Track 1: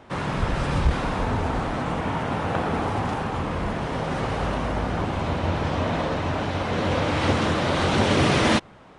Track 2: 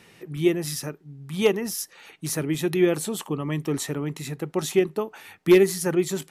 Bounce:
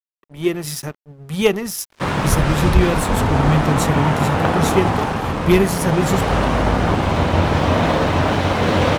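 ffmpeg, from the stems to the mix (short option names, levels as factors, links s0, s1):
-filter_complex "[0:a]adelay=1900,volume=1.26[s0];[1:a]asubboost=boost=6.5:cutoff=140,volume=0.891[s1];[s0][s1]amix=inputs=2:normalize=0,dynaudnorm=f=140:g=7:m=2.82,aeval=exprs='sgn(val(0))*max(abs(val(0))-0.0211,0)':c=same"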